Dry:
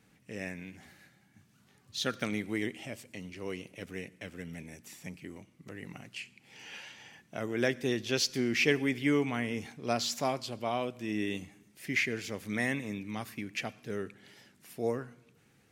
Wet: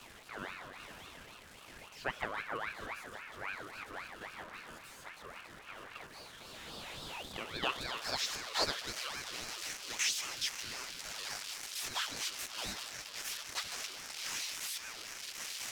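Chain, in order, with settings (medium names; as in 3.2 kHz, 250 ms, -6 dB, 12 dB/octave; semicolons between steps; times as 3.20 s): zero-crossing glitches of -21.5 dBFS; bass shelf 460 Hz +11 dB; on a send: filtered feedback delay 151 ms, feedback 75%, low-pass 2.2 kHz, level -8.5 dB; on the sum: band-pass sweep 770 Hz -> 3.9 kHz, 6.08–8.87 s; in parallel at -10 dB: small samples zeroed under -54 dBFS; on the sum: ring modulator with a swept carrier 1.4 kHz, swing 45%, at 3.7 Hz; trim +1 dB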